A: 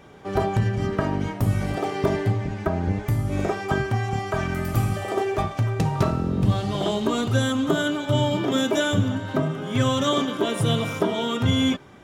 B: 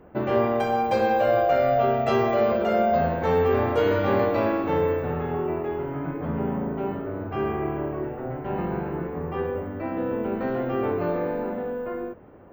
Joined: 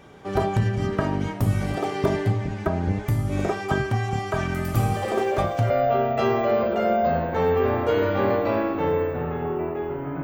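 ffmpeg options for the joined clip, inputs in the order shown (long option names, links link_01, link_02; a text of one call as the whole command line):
ffmpeg -i cue0.wav -i cue1.wav -filter_complex "[1:a]asplit=2[link_01][link_02];[0:a]apad=whole_dur=10.23,atrim=end=10.23,atrim=end=5.702[link_03];[link_02]atrim=start=1.588:end=6.12[link_04];[link_01]atrim=start=0.68:end=1.59,asetpts=PTS-STARTPTS,volume=-8dB,afade=type=in:duration=0.004:curve=hsin,afade=type=out:start_time=0.906:duration=0.004:curve=hsin,adelay=4790[link_05];[link_03][link_04]acrossfade=duration=0.004:curve1=hsin:curve2=hsin[link_06];[link_06][link_05]amix=inputs=2:normalize=0" out.wav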